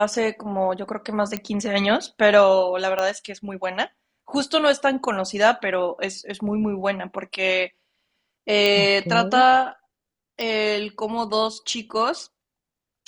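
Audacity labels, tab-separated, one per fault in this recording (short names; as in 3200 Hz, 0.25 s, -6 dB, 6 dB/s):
1.370000	1.370000	pop -12 dBFS
2.990000	2.990000	pop -11 dBFS
8.660000	8.660000	pop -7 dBFS
10.410000	10.410000	pop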